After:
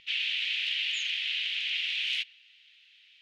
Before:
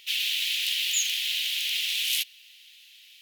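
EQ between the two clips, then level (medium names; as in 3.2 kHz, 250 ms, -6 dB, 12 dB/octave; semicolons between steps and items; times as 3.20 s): dynamic bell 2.4 kHz, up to +4 dB, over -38 dBFS, Q 1; distance through air 110 m; tone controls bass +11 dB, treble -13 dB; 0.0 dB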